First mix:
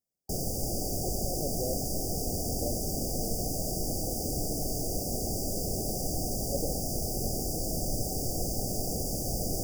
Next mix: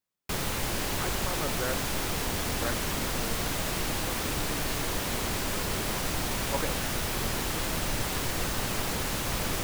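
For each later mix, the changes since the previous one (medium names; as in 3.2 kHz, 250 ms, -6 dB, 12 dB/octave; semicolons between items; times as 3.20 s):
master: remove brick-wall FIR band-stop 800–4600 Hz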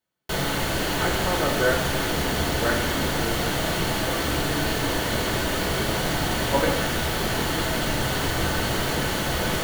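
reverb: on, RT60 1.0 s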